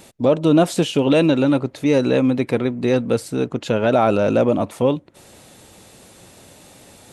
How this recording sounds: noise floor -48 dBFS; spectral tilt -6.0 dB/octave

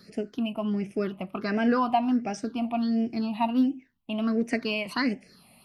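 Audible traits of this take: phasing stages 6, 1.4 Hz, lowest notch 410–1100 Hz

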